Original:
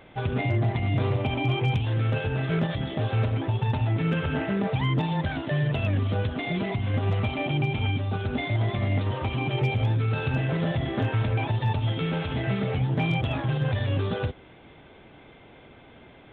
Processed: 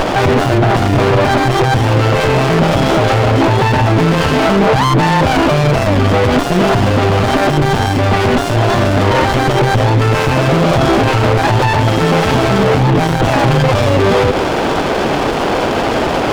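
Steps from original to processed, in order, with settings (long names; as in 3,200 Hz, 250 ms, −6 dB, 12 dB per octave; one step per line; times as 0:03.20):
downward compressor, threshold −28 dBFS, peak gain reduction 8.5 dB
mid-hump overdrive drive 25 dB, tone 2,500 Hz, clips at −19.5 dBFS
boost into a limiter +29 dB
windowed peak hold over 17 samples
level −3.5 dB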